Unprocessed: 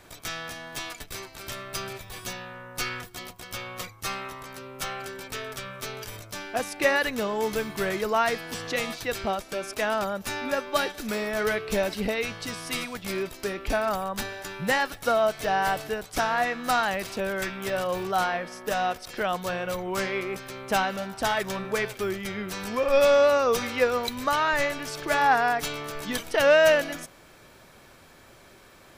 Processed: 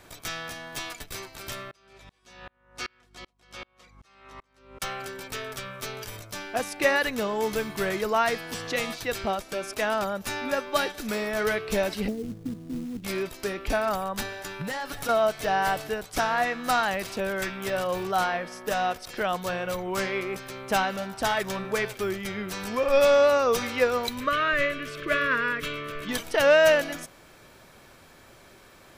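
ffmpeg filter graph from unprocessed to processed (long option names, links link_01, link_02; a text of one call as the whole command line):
ffmpeg -i in.wav -filter_complex "[0:a]asettb=1/sr,asplit=3[link_01][link_02][link_03];[link_01]atrim=end=1.714[link_04];[link_02]atrim=start=1.71:end=4.82,asetpts=PTS-STARTPTS,afade=type=in:duration=0.004:curve=qsin,afade=type=out:start_time=3.106:duration=0.004:curve=qsin,highpass=200,lowpass=7100,aeval=exprs='val(0)+0.00447*(sin(2*PI*50*n/s)+sin(2*PI*2*50*n/s)/2+sin(2*PI*3*50*n/s)/3+sin(2*PI*4*50*n/s)/4+sin(2*PI*5*50*n/s)/5)':channel_layout=same,aeval=exprs='val(0)*pow(10,-36*if(lt(mod(-2.6*n/s,1),2*abs(-2.6)/1000),1-mod(-2.6*n/s,1)/(2*abs(-2.6)/1000),(mod(-2.6*n/s,1)-2*abs(-2.6)/1000)/(1-2*abs(-2.6)/1000))/20)':channel_layout=same[link_05];[link_03]atrim=start=4.816[link_06];[link_04][link_05]acrossfade=duration=0.004:curve1=hsin:curve2=qsin[link_07];[link_07][link_06]acrossfade=duration=0.004:curve1=qsin:curve2=hsin,asettb=1/sr,asplit=3[link_08][link_09][link_10];[link_08]atrim=end=12.084[link_11];[link_09]atrim=start=12.08:end=13.04,asetpts=PTS-STARTPTS,afade=type=in:duration=0.004:curve=qsin,afade=type=out:start_time=0.956:duration=0.004:curve=qsin,lowpass=frequency=270:width_type=q:width=2.1,acrusher=bits=5:mode=log:mix=0:aa=0.000001[link_12];[link_10]atrim=start=13.036[link_13];[link_11][link_12]acrossfade=duration=0.004:curve1=hsin:curve2=qsin[link_14];[link_14][link_13]acrossfade=duration=0.004:curve1=qsin:curve2=hsin,asettb=1/sr,asplit=3[link_15][link_16][link_17];[link_15]atrim=end=14.614[link_18];[link_16]atrim=start=14.61:end=15.09,asetpts=PTS-STARTPTS,afade=type=in:duration=0.004:curve=qsin,afade=type=out:start_time=0.476:duration=0.004:curve=qsin,aecho=1:1:7:0.35,atrim=end_sample=21168,aeval=exprs='0.266*sin(PI/2*1.78*val(0)/0.266)':channel_layout=same,acompressor=threshold=-30dB:ratio=10:attack=3.2:release=140:knee=1:detection=peak[link_19];[link_17]atrim=start=15.086[link_20];[link_18][link_19]acrossfade=duration=0.004:curve1=hsin:curve2=qsin[link_21];[link_21][link_20]acrossfade=duration=0.004:curve1=qsin:curve2=hsin,asettb=1/sr,asplit=3[link_22][link_23][link_24];[link_22]atrim=end=24.204[link_25];[link_23]atrim=start=24.2:end=26.09,asetpts=PTS-STARTPTS,afade=type=in:duration=0.004:curve=qsin,afade=type=out:start_time=1.886:duration=0.004:curve=qsin,asuperstop=centerf=800:order=12:qfactor=2.3,highshelf=frequency=3900:width_type=q:width=1.5:gain=-8.5[link_26];[link_24]atrim=start=26.086[link_27];[link_25][link_26]acrossfade=duration=0.004:curve1=hsin:curve2=qsin[link_28];[link_28][link_27]acrossfade=duration=0.004:curve1=qsin:curve2=hsin" out.wav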